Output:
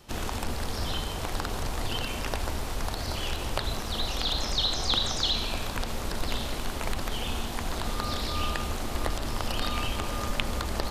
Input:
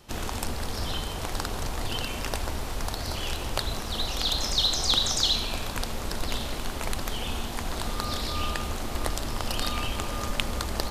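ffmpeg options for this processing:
-filter_complex "[0:a]acrossover=split=4000[a][b];[b]acompressor=threshold=-36dB:ratio=4:attack=1:release=60[c];[a][c]amix=inputs=2:normalize=0"

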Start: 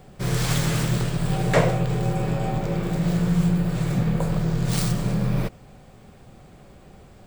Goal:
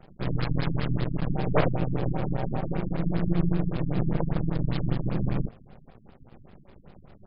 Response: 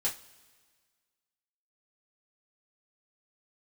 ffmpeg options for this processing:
-filter_complex "[0:a]aeval=exprs='max(val(0),0)':c=same,asplit=2[a][b];[1:a]atrim=start_sample=2205,lowshelf=f=430:g=2.5[c];[b][c]afir=irnorm=-1:irlink=0,volume=-23.5dB[d];[a][d]amix=inputs=2:normalize=0,afftfilt=real='re*lt(b*sr/1024,280*pow(5300/280,0.5+0.5*sin(2*PI*5.1*pts/sr)))':imag='im*lt(b*sr/1024,280*pow(5300/280,0.5+0.5*sin(2*PI*5.1*pts/sr)))':win_size=1024:overlap=0.75"

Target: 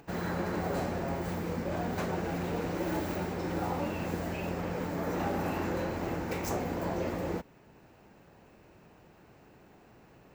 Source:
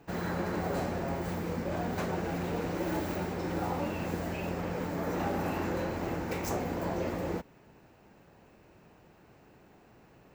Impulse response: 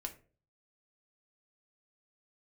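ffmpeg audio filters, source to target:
-af "acompressor=mode=upward:threshold=-53dB:ratio=2.5"

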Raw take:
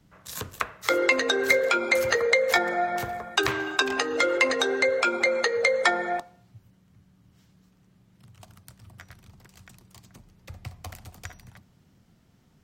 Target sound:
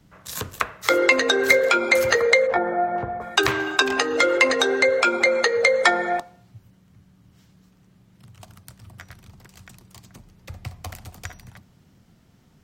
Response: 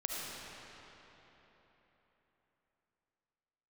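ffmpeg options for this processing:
-filter_complex "[0:a]asplit=3[a][b][c];[a]afade=t=out:st=2.46:d=0.02[d];[b]lowpass=1.1k,afade=t=in:st=2.46:d=0.02,afade=t=out:st=3.2:d=0.02[e];[c]afade=t=in:st=3.2:d=0.02[f];[d][e][f]amix=inputs=3:normalize=0,volume=4.5dB"

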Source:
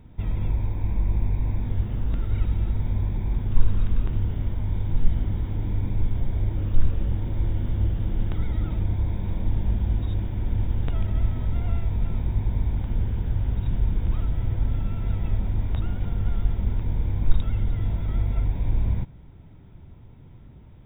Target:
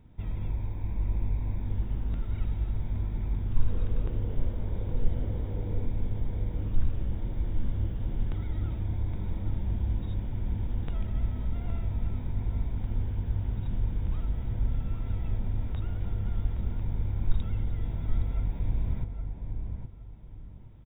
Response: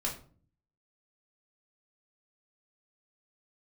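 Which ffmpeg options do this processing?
-filter_complex "[0:a]asettb=1/sr,asplit=3[a][b][c];[a]atrim=end=3.694[d];[b]atrim=start=3.69:end=5.86,asetpts=PTS-STARTPTS,afade=t=in:d=0.004:c=qsin,afade=t=out:st=2.166:d=0.004:c=qsin,equalizer=f=490:t=o:w=0.69:g=12[e];[c]atrim=start=5.856[f];[d][e]acrossfade=d=0.004:c1=hsin:c2=qsin[g];[g][f]acrossfade=d=0.004:c1=qsin:c2=hsin,asplit=2[h][i];[i]adelay=817,lowpass=f=1.5k:p=1,volume=-5.5dB,asplit=2[j][k];[k]adelay=817,lowpass=f=1.5k:p=1,volume=0.27,asplit=2[l][m];[m]adelay=817,lowpass=f=1.5k:p=1,volume=0.27,asplit=2[n][o];[o]adelay=817,lowpass=f=1.5k:p=1,volume=0.27[p];[h][j][l][n][p]amix=inputs=5:normalize=0,volume=-7dB"

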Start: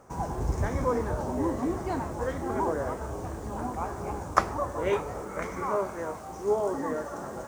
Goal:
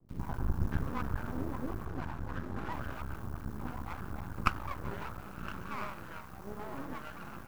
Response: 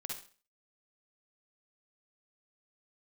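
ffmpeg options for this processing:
-filter_complex "[0:a]firequalizer=gain_entry='entry(160,0);entry(260,-4);entry(440,-17);entry(810,-10);entry(1500,1);entry(2100,-23);entry(4600,-14);entry(8400,-25);entry(12000,-2)':delay=0.05:min_phase=1,acrusher=bits=9:mix=0:aa=0.000001,asettb=1/sr,asplit=3[a][b][c];[a]atrim=end=1.764[d];[b]atrim=start=1.76:end=2.63,asetpts=PTS-STARTPTS,afade=t=in:d=0.004:c=qsin,afade=t=out:st=0.866:d=0.004:c=qsin,highshelf=f=7.4k:g=-9.5[e];[c]atrim=start=2.626[f];[d][e]acrossfade=d=0.004:c1=hsin:c2=qsin[g];[g][f]acrossfade=d=0.004:c1=qsin:c2=hsin,acrossover=split=490[h][i];[i]adelay=90[j];[h][j]amix=inputs=2:normalize=0,aeval=exprs='max(val(0),0)':c=same,volume=2dB"

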